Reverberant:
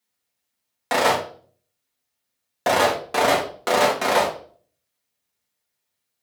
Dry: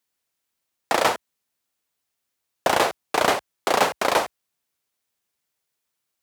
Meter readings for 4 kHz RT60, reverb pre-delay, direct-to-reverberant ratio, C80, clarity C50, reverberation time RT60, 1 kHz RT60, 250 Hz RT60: 0.40 s, 4 ms, -4.5 dB, 13.5 dB, 8.0 dB, 0.45 s, 0.40 s, 0.60 s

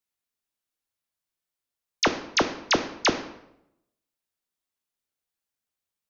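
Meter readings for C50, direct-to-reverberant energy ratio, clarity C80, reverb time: 11.0 dB, 7.0 dB, 13.5 dB, 0.80 s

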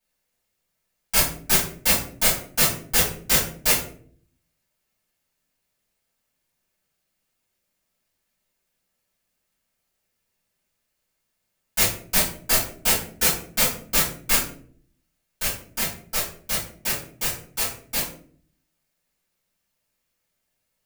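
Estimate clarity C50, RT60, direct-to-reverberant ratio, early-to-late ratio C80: 6.0 dB, 0.55 s, -10.0 dB, 11.0 dB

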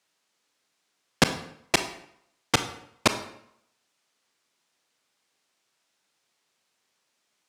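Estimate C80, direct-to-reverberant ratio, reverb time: 13.5 dB, 8.0 dB, 0.70 s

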